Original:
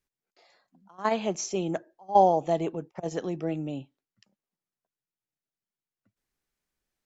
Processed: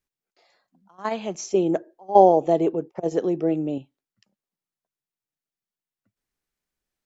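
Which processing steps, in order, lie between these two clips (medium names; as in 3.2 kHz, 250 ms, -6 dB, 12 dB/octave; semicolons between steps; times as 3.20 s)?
1.54–3.78 s: peaking EQ 400 Hz +11.5 dB 1.6 oct; trim -1 dB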